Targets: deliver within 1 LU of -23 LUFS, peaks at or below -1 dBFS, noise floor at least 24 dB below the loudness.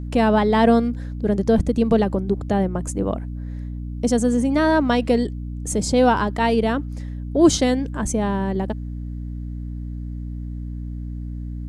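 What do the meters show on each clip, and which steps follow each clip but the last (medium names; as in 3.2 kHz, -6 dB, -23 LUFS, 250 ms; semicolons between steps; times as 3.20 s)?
hum 60 Hz; highest harmonic 300 Hz; hum level -27 dBFS; loudness -20.5 LUFS; peak level -3.5 dBFS; loudness target -23.0 LUFS
-> hum notches 60/120/180/240/300 Hz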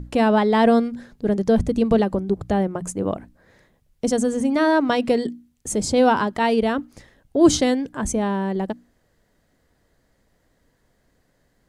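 hum not found; loudness -21.0 LUFS; peak level -3.5 dBFS; loudness target -23.0 LUFS
-> trim -2 dB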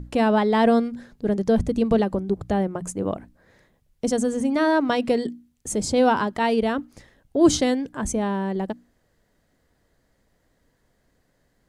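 loudness -23.0 LUFS; peak level -5.5 dBFS; noise floor -68 dBFS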